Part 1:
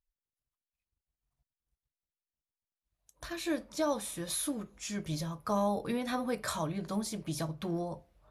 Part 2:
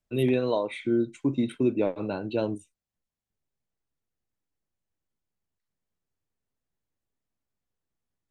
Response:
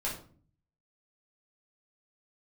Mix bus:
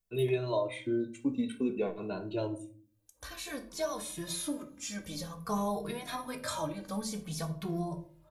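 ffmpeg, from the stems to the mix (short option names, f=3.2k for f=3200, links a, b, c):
-filter_complex "[0:a]volume=-1dB,asplit=2[a][b];[b]volume=-8.5dB[c];[1:a]deesser=0.8,volume=-5dB,asplit=2[d][e];[e]volume=-10.5dB[f];[2:a]atrim=start_sample=2205[g];[c][f]amix=inputs=2:normalize=0[h];[h][g]afir=irnorm=-1:irlink=0[i];[a][d][i]amix=inputs=3:normalize=0,acrossover=split=8400[j][k];[k]acompressor=threshold=-53dB:ratio=4:attack=1:release=60[l];[j][l]amix=inputs=2:normalize=0,highshelf=f=7.8k:g=10,asplit=2[m][n];[n]adelay=2.3,afreqshift=-0.53[o];[m][o]amix=inputs=2:normalize=1"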